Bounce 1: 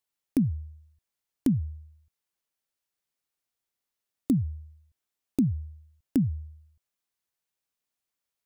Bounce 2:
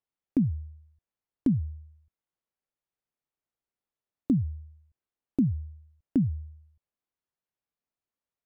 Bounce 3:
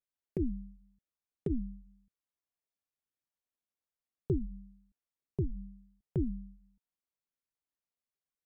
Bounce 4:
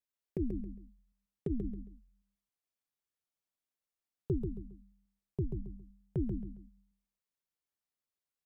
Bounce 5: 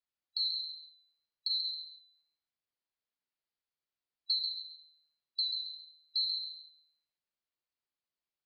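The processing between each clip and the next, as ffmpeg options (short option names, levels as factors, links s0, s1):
-af "lowpass=f=1000:p=1"
-af "aeval=exprs='val(0)*sin(2*PI*120*n/s)':c=same,flanger=delay=0.5:depth=3.9:regen=-42:speed=0.95:shape=sinusoidal"
-af "aecho=1:1:136|272|408:0.501|0.135|0.0365,volume=0.794"
-af "afftfilt=real='real(if(lt(b,736),b+184*(1-2*mod(floor(b/184),2)),b),0)':imag='imag(if(lt(b,736),b+184*(1-2*mod(floor(b/184),2)),b),0)':win_size=2048:overlap=0.75,aresample=11025,aresample=44100"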